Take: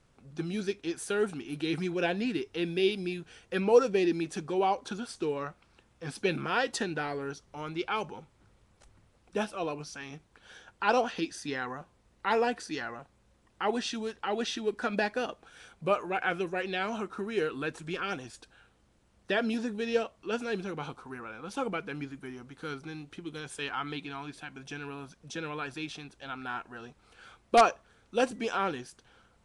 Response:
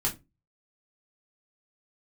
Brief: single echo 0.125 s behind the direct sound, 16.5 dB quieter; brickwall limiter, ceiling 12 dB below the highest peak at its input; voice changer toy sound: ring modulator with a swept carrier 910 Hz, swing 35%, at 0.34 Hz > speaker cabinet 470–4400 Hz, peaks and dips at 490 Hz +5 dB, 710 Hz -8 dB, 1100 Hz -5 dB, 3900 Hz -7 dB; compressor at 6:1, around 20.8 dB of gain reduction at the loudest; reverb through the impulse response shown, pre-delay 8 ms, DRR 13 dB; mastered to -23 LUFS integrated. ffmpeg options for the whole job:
-filter_complex "[0:a]acompressor=threshold=-39dB:ratio=6,alimiter=level_in=12.5dB:limit=-24dB:level=0:latency=1,volume=-12.5dB,aecho=1:1:125:0.15,asplit=2[a][b];[1:a]atrim=start_sample=2205,adelay=8[c];[b][c]afir=irnorm=-1:irlink=0,volume=-20dB[d];[a][d]amix=inputs=2:normalize=0,aeval=exprs='val(0)*sin(2*PI*910*n/s+910*0.35/0.34*sin(2*PI*0.34*n/s))':c=same,highpass=470,equalizer=f=490:t=q:w=4:g=5,equalizer=f=710:t=q:w=4:g=-8,equalizer=f=1.1k:t=q:w=4:g=-5,equalizer=f=3.9k:t=q:w=4:g=-7,lowpass=f=4.4k:w=0.5412,lowpass=f=4.4k:w=1.3066,volume=28.5dB"

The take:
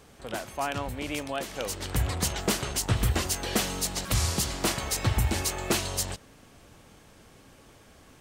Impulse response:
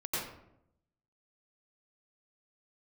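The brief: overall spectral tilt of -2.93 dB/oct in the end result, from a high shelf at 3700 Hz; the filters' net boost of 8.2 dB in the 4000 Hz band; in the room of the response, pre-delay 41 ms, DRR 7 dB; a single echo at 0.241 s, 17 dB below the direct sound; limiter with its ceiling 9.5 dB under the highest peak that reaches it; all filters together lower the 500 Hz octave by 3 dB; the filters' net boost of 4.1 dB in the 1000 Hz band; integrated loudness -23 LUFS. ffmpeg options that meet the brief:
-filter_complex "[0:a]equalizer=f=500:t=o:g=-6.5,equalizer=f=1k:t=o:g=6.5,highshelf=f=3.7k:g=6,equalizer=f=4k:t=o:g=6,alimiter=limit=-17.5dB:level=0:latency=1,aecho=1:1:241:0.141,asplit=2[a][b];[1:a]atrim=start_sample=2205,adelay=41[c];[b][c]afir=irnorm=-1:irlink=0,volume=-12dB[d];[a][d]amix=inputs=2:normalize=0,volume=4.5dB"

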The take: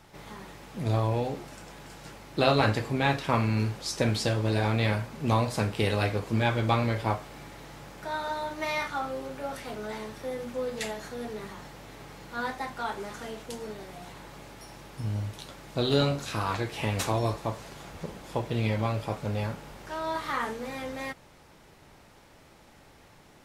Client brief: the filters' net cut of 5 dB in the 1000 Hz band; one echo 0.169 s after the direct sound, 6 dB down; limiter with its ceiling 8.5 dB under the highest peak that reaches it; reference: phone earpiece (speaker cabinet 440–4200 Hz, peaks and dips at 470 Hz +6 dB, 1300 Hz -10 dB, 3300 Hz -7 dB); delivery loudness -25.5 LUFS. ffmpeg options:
-af "equalizer=f=1k:t=o:g=-4,alimiter=limit=-17.5dB:level=0:latency=1,highpass=440,equalizer=f=470:t=q:w=4:g=6,equalizer=f=1.3k:t=q:w=4:g=-10,equalizer=f=3.3k:t=q:w=4:g=-7,lowpass=f=4.2k:w=0.5412,lowpass=f=4.2k:w=1.3066,aecho=1:1:169:0.501,volume=9.5dB"

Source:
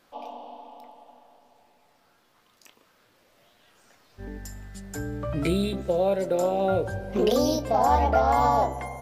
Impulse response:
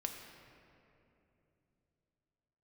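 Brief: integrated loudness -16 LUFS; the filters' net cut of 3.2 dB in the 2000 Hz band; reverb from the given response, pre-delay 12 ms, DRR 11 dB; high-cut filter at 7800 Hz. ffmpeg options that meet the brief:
-filter_complex "[0:a]lowpass=7.8k,equalizer=f=2k:t=o:g=-4.5,asplit=2[a][b];[1:a]atrim=start_sample=2205,adelay=12[c];[b][c]afir=irnorm=-1:irlink=0,volume=-10.5dB[d];[a][d]amix=inputs=2:normalize=0,volume=8dB"

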